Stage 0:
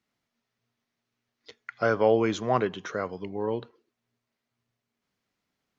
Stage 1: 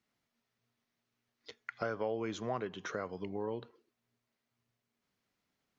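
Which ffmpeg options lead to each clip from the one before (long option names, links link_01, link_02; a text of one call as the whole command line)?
ffmpeg -i in.wav -af "acompressor=threshold=-34dB:ratio=3,volume=-2dB" out.wav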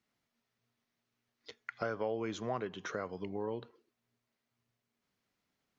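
ffmpeg -i in.wav -af anull out.wav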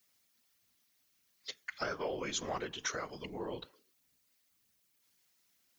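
ffmpeg -i in.wav -af "afftfilt=real='hypot(re,im)*cos(2*PI*random(0))':imag='hypot(re,im)*sin(2*PI*random(1))':win_size=512:overlap=0.75,crystalizer=i=8:c=0,volume=2dB" out.wav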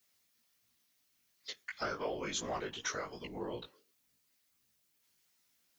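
ffmpeg -i in.wav -af "flanger=delay=16.5:depth=4.5:speed=2.8,volume=2.5dB" out.wav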